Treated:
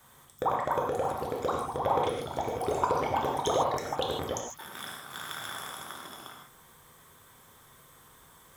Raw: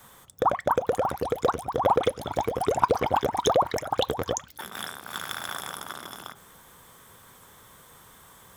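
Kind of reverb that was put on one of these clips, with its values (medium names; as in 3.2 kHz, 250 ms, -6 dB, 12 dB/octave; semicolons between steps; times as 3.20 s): gated-style reverb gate 180 ms flat, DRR -0.5 dB; trim -7.5 dB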